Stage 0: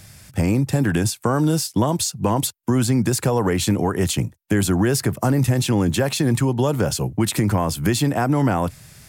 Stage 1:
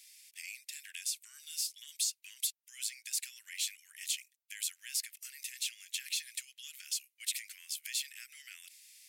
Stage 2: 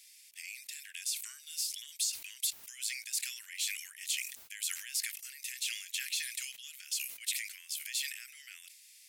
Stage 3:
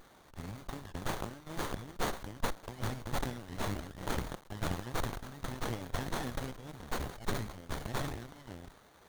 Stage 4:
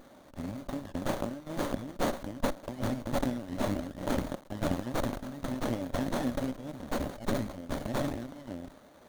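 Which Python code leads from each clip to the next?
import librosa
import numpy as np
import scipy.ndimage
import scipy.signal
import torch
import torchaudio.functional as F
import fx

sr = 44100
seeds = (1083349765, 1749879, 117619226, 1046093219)

y1 = scipy.signal.sosfilt(scipy.signal.butter(8, 2100.0, 'highpass', fs=sr, output='sos'), x)
y1 = y1 * 10.0 ** (-9.0 / 20.0)
y2 = fx.sustainer(y1, sr, db_per_s=73.0)
y3 = fx.running_max(y2, sr, window=17)
y3 = y3 * 10.0 ** (3.5 / 20.0)
y4 = fx.small_body(y3, sr, hz=(260.0, 570.0), ring_ms=30, db=12)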